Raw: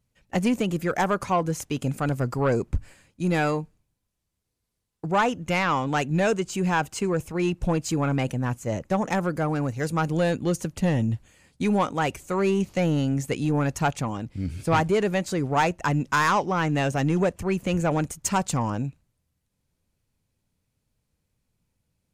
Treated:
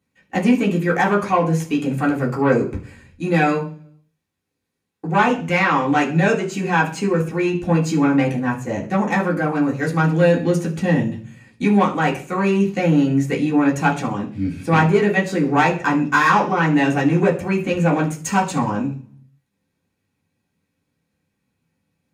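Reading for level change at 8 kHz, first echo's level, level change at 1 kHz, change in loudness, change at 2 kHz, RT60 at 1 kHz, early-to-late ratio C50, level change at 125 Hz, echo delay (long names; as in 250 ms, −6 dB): 0.0 dB, no echo audible, +6.0 dB, +6.5 dB, +8.0 dB, 0.40 s, 11.5 dB, +4.5 dB, no echo audible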